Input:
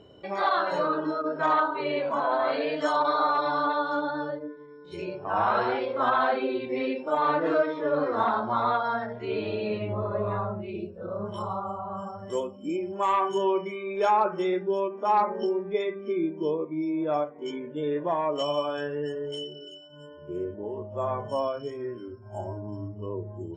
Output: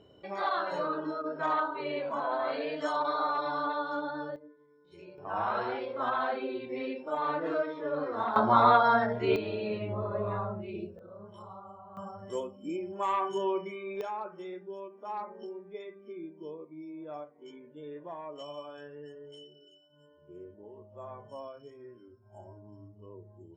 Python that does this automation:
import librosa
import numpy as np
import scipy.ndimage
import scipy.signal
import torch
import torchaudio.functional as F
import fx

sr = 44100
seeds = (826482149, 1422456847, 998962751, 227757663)

y = fx.gain(x, sr, db=fx.steps((0.0, -6.0), (4.36, -15.5), (5.18, -7.0), (8.36, 4.5), (9.36, -4.0), (10.99, -15.0), (11.97, -5.5), (14.01, -15.0)))